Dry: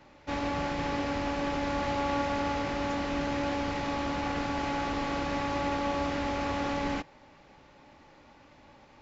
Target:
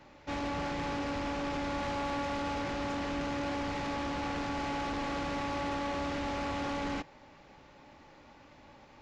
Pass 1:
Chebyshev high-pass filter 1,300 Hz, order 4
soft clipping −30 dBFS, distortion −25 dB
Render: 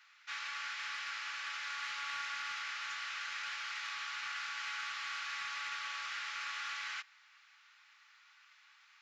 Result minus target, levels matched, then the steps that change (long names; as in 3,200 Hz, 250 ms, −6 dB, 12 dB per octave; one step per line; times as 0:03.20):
1,000 Hz band −4.0 dB
remove: Chebyshev high-pass filter 1,300 Hz, order 4